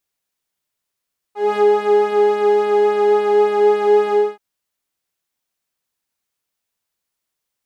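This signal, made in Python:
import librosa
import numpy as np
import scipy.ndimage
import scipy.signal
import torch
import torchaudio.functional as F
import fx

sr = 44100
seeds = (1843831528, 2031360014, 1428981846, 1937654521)

y = fx.sub_patch_pwm(sr, seeds[0], note=68, wave2='saw', interval_st=0, detune_cents=16, level2_db=-9.0, sub_db=-19.0, noise_db=-16, kind='bandpass', cutoff_hz=470.0, q=1.4, env_oct=1.0, env_decay_s=0.09, env_sustain_pct=0, attack_ms=215.0, decay_s=0.08, sustain_db=-3.5, release_s=0.25, note_s=2.78, lfo_hz=3.6, width_pct=21, width_swing_pct=15)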